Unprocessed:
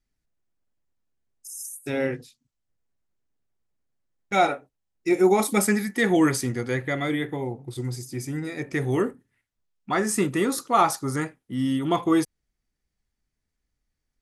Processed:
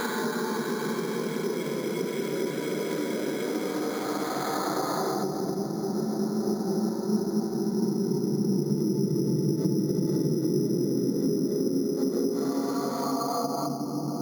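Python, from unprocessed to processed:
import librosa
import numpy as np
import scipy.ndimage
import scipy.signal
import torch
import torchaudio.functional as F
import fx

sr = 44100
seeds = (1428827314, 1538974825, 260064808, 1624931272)

y = fx.echo_pitch(x, sr, ms=400, semitones=2, count=3, db_per_echo=-6.0)
y = fx.paulstretch(y, sr, seeds[0], factor=11.0, window_s=0.5, from_s=9.42)
y = fx.env_lowpass_down(y, sr, base_hz=330.0, full_db=-19.5)
y = np.repeat(scipy.signal.resample_poly(y, 1, 8), 8)[:len(y)]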